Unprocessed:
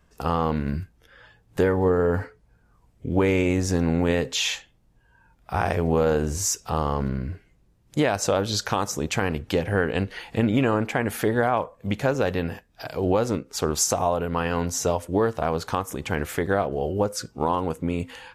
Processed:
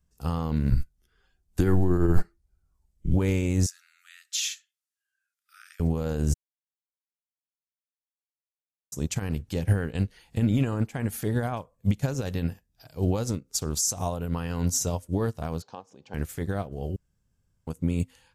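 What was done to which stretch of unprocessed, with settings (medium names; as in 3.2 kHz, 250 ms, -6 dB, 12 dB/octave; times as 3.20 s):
0.70–3.14 s: frequency shift -93 Hz
3.66–5.80 s: brick-wall FIR high-pass 1.2 kHz
6.34–8.92 s: mute
11.51–14.12 s: dynamic bell 6.2 kHz, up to +4 dB, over -38 dBFS, Q 0.71
15.62–16.14 s: cabinet simulation 270–4900 Hz, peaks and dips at 310 Hz -4 dB, 530 Hz +3 dB, 780 Hz +5 dB, 1.3 kHz -7 dB, 2 kHz -9 dB, 3.5 kHz -5 dB
16.96–17.67 s: room tone
whole clip: tone controls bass +13 dB, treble +14 dB; loudness maximiser +7 dB; upward expansion 2.5:1, over -19 dBFS; trim -6 dB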